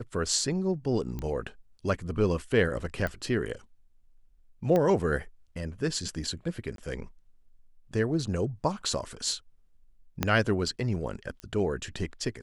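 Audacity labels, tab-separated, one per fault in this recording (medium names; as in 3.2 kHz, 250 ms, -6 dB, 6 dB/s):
1.190000	1.190000	pop -22 dBFS
3.070000	3.070000	pop -19 dBFS
4.760000	4.760000	pop -15 dBFS
6.760000	6.780000	dropout 22 ms
10.230000	10.230000	pop -10 dBFS
11.400000	11.400000	pop -26 dBFS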